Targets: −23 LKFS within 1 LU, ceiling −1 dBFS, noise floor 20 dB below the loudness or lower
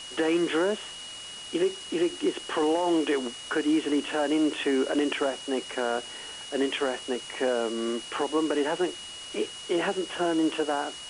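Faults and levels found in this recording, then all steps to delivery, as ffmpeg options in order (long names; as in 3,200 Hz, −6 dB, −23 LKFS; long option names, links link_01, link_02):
interfering tone 2,900 Hz; level of the tone −40 dBFS; background noise floor −41 dBFS; target noise floor −48 dBFS; integrated loudness −28.0 LKFS; sample peak −15.0 dBFS; target loudness −23.0 LKFS
→ -af "bandreject=frequency=2900:width=30"
-af "afftdn=noise_reduction=7:noise_floor=-41"
-af "volume=5dB"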